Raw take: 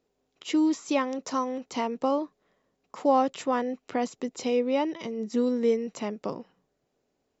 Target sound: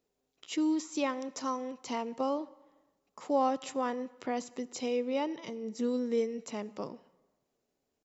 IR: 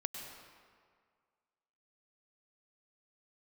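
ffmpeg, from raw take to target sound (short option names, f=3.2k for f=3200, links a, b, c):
-filter_complex "[0:a]highshelf=f=6k:g=8,atempo=0.92,asplit=2[a][b];[1:a]atrim=start_sample=2205,asetrate=70560,aresample=44100[c];[b][c]afir=irnorm=-1:irlink=0,volume=-10.5dB[d];[a][d]amix=inputs=2:normalize=0,volume=-7.5dB"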